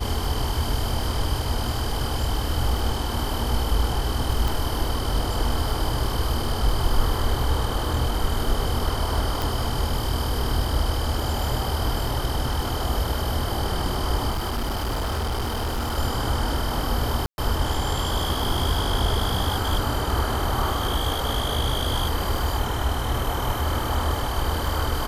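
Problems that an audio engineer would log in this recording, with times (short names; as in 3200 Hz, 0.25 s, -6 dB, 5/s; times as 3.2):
crackle 20/s -31 dBFS
4.48 pop
9.42 pop
14.3–15.98 clipped -22.5 dBFS
17.26–17.38 gap 0.121 s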